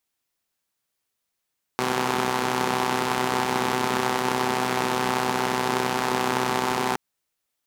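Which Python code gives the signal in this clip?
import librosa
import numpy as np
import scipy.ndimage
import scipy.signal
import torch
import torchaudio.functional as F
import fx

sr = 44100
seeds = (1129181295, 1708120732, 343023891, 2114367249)

y = fx.engine_four(sr, seeds[0], length_s=5.17, rpm=3800, resonances_hz=(230.0, 390.0, 810.0))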